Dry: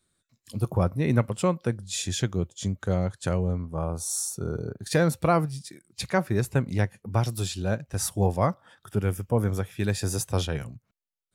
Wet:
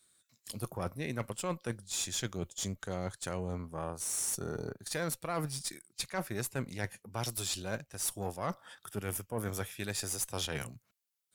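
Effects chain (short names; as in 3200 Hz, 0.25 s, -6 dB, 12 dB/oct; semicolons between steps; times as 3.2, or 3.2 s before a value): tilt +2.5 dB/oct; reverse; compressor 6:1, threshold -33 dBFS, peak gain reduction 15 dB; reverse; added harmonics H 6 -24 dB, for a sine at -20 dBFS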